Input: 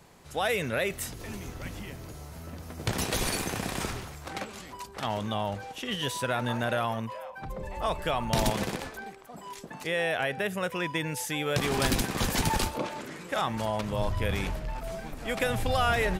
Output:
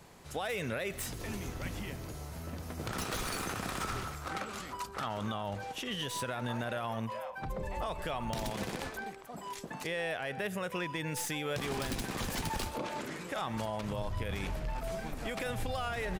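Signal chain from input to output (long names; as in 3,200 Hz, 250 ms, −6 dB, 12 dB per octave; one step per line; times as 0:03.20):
stylus tracing distortion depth 0.033 ms
single-tap delay 125 ms −23.5 dB
downward compressor 6 to 1, threshold −31 dBFS, peak gain reduction 10 dB
0:02.83–0:05.43: parametric band 1,300 Hz +10.5 dB 0.33 octaves
brickwall limiter −26 dBFS, peak gain reduction 7 dB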